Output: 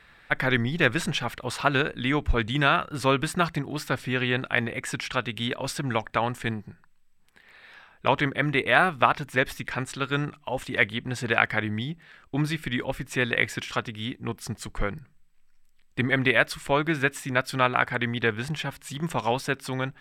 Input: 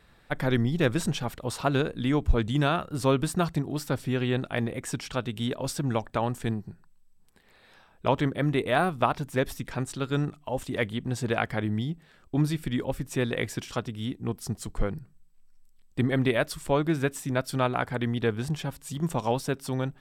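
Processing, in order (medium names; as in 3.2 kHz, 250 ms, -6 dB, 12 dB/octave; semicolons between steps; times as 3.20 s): peaking EQ 2 kHz +12.5 dB 2 oct; trim -2 dB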